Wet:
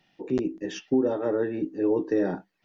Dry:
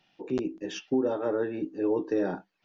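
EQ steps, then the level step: tilt shelf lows +4.5 dB, about 810 Hz; bell 1900 Hz +8.5 dB 0.23 oct; high shelf 3500 Hz +7 dB; 0.0 dB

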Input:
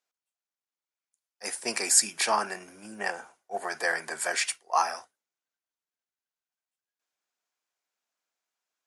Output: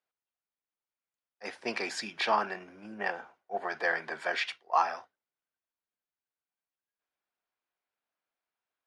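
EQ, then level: air absorption 270 m; dynamic EQ 3500 Hz, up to +7 dB, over -54 dBFS, Q 2.3; 0.0 dB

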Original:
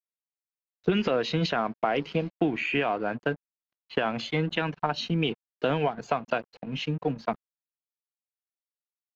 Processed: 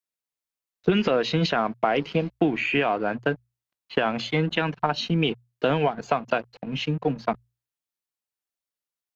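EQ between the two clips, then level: notches 60/120 Hz; +3.5 dB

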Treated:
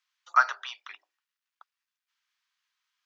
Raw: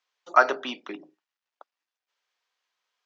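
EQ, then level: HPF 1100 Hz 24 dB/oct; dynamic EQ 2600 Hz, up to -6 dB, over -41 dBFS, Q 1.9; 0.0 dB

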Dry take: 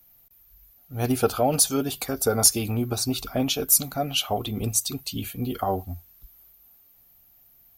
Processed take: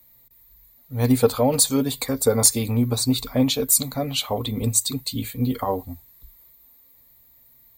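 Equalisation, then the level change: ripple EQ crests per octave 1, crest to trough 11 dB; +1.5 dB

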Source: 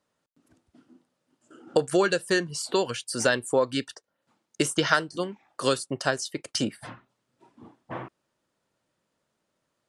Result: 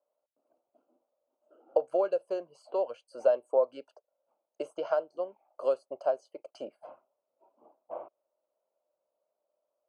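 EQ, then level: running mean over 24 samples; resonant high-pass 600 Hz, resonance Q 5.2; -8.5 dB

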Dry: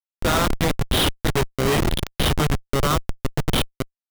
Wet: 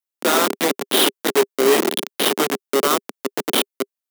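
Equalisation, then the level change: steep high-pass 230 Hz 36 dB/oct; high shelf 8400 Hz +7.5 dB; dynamic EQ 400 Hz, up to +7 dB, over -39 dBFS, Q 5.3; +2.5 dB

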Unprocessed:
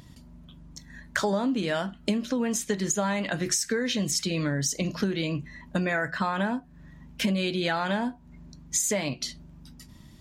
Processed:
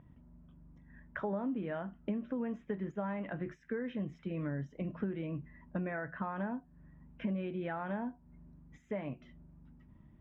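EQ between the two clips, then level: running mean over 10 samples; air absorption 430 m; -8.5 dB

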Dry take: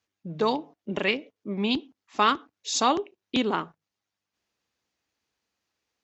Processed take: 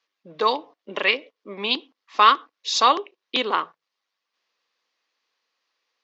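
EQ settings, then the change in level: speaker cabinet 350–5000 Hz, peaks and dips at 510 Hz +6 dB, 1100 Hz +9 dB, 1900 Hz +3 dB; high shelf 2200 Hz +11.5 dB; -1.0 dB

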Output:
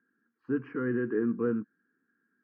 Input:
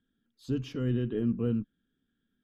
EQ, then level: speaker cabinet 310–2000 Hz, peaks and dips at 340 Hz +4 dB, 480 Hz +7 dB, 740 Hz +5 dB, 1100 Hz +4 dB, 1600 Hz +7 dB; fixed phaser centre 1500 Hz, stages 4; +6.5 dB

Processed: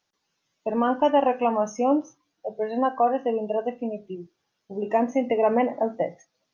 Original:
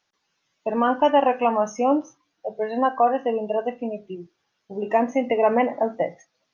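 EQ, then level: bell 1800 Hz -5 dB 2.6 oct; 0.0 dB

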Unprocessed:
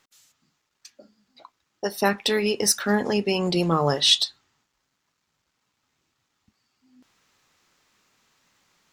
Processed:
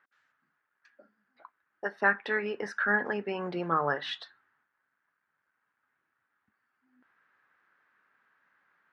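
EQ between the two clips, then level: HPF 69 Hz; synth low-pass 1600 Hz, resonance Q 5.2; low shelf 170 Hz -12 dB; -8.0 dB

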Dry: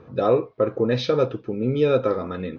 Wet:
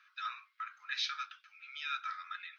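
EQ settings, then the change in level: steep high-pass 1400 Hz 48 dB/oct; notch 1800 Hz, Q 20; dynamic EQ 3300 Hz, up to -4 dB, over -45 dBFS, Q 0.74; 0.0 dB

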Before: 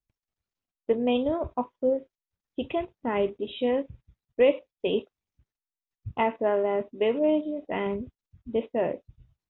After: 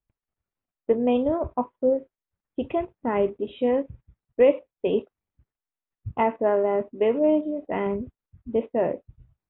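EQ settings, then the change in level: LPF 1900 Hz 12 dB/oct; +3.0 dB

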